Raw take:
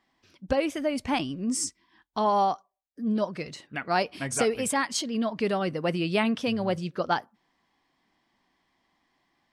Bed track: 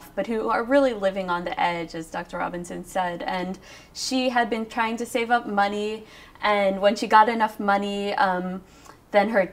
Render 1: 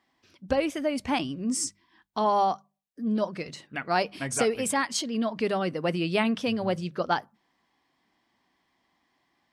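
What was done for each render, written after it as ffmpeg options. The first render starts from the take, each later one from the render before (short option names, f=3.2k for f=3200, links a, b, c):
-af "highpass=44,bandreject=f=50:t=h:w=6,bandreject=f=100:t=h:w=6,bandreject=f=150:t=h:w=6,bandreject=f=200:t=h:w=6"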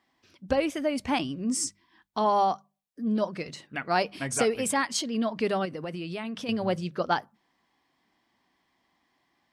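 -filter_complex "[0:a]asettb=1/sr,asplit=3[a][b][c];[a]atrim=end=5.654[d];[b]atrim=start=5.65:end=6.49,asetpts=PTS-STARTPTS,afade=t=in:d=0.004:c=qsin,afade=t=out:st=0.836:d=0.004:c=qsin,acompressor=threshold=-32dB:ratio=5:attack=3.2:release=140:knee=1:detection=peak[e];[c]atrim=start=6.486[f];[d][e]acrossfade=d=0.004:c1=hsin:c2=qsin[g];[g][f]acrossfade=d=0.004:c1=qsin:c2=hsin"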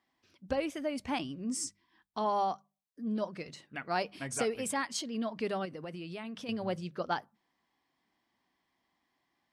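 -af "volume=-7dB"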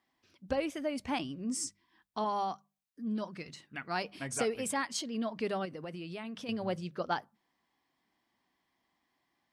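-filter_complex "[0:a]asettb=1/sr,asplit=3[a][b][c];[a]atrim=end=2.244[d];[b]atrim=start=2.24:end=4.04,asetpts=PTS-STARTPTS,afade=t=in:d=0.004:c=qsin,afade=t=out:st=1.796:d=0.004:c=qsin,equalizer=f=560:t=o:w=0.98:g=-6.5[e];[c]atrim=start=4.036[f];[d][e]acrossfade=d=0.004:c1=hsin:c2=qsin[g];[g][f]acrossfade=d=0.004:c1=qsin:c2=hsin"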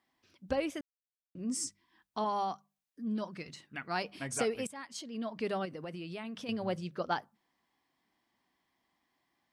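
-filter_complex "[0:a]asplit=4[a][b][c][d];[a]atrim=end=0.81,asetpts=PTS-STARTPTS,afade=t=out:st=0.806:d=0.004:c=hsin[e];[b]atrim=start=0.81:end=1.35,asetpts=PTS-STARTPTS,volume=0[f];[c]atrim=start=1.35:end=4.67,asetpts=PTS-STARTPTS,afade=t=in:d=0.004:c=hsin,afade=t=out:st=3.316:d=0.004:c=hsin:silence=0.133352[g];[d]atrim=start=4.67,asetpts=PTS-STARTPTS,afade=t=in:d=0.86:silence=0.133352[h];[e][f][g][h]concat=n=4:v=0:a=1"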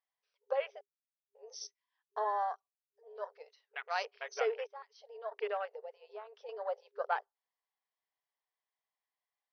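-af "afwtdn=0.00708,afftfilt=real='re*between(b*sr/4096,400,6200)':imag='im*between(b*sr/4096,400,6200)':win_size=4096:overlap=0.75"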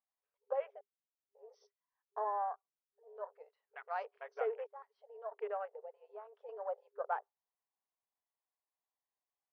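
-af "lowpass=1.1k,lowshelf=f=330:g=-9"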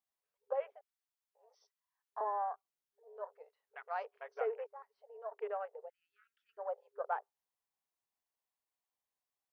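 -filter_complex "[0:a]asettb=1/sr,asplit=3[a][b][c];[a]atrim=end=0.724[d];[b]atrim=start=0.72:end=2.21,asetpts=PTS-STARTPTS,afade=t=in:d=0.004:c=qsin,afade=t=out:st=1.486:d=0.004:c=qsin,highpass=f=680:w=0.5412,highpass=f=680:w=1.3066[e];[c]atrim=start=2.206[f];[d][e]acrossfade=d=0.004:c1=hsin:c2=qsin[g];[g][f]acrossfade=d=0.004:c1=qsin:c2=hsin,asettb=1/sr,asplit=3[h][i][j];[h]atrim=end=4.414[k];[i]atrim=start=4.41:end=5.37,asetpts=PTS-STARTPTS,afade=t=in:d=0.004:c=qsin,afade=t=out:st=0.956:d=0.004:c=qsin,bandreject=f=3.3k:w=7.9[l];[j]atrim=start=5.366[m];[k][l]acrossfade=d=0.004:c1=hsin:c2=qsin[n];[n][m]acrossfade=d=0.004:c1=qsin:c2=hsin,asplit=3[o][p][q];[o]afade=t=out:st=5.88:d=0.02[r];[p]asuperstop=centerf=660:order=20:qfactor=0.65,afade=t=in:st=5.88:d=0.02,afade=t=out:st=6.57:d=0.02[s];[q]afade=t=in:st=6.57:d=0.02[t];[r][s][t]amix=inputs=3:normalize=0"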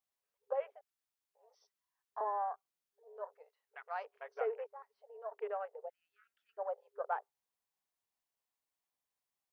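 -filter_complex "[0:a]asettb=1/sr,asplit=3[a][b][c];[a]atrim=end=3.344[d];[b]atrim=start=3.34:end=4.1,asetpts=PTS-STARTPTS,afade=t=in:d=0.004:c=qsin,afade=t=out:st=0.756:d=0.004:c=qsin,lowshelf=f=360:g=-10.5[e];[c]atrim=start=4.096[f];[d][e]acrossfade=d=0.004:c1=hsin:c2=qsin[g];[g][f]acrossfade=d=0.004:c1=qsin:c2=hsin,asettb=1/sr,asplit=3[h][i][j];[h]atrim=end=5.844[k];[i]atrim=start=5.84:end=6.63,asetpts=PTS-STARTPTS,afade=t=in:d=0.004:c=qsin,afade=t=out:st=0.786:d=0.004:c=qsin,equalizer=f=690:t=o:w=0.77:g=7[l];[j]atrim=start=6.626[m];[k][l]acrossfade=d=0.004:c1=hsin:c2=qsin[n];[n][m]acrossfade=d=0.004:c1=qsin:c2=hsin"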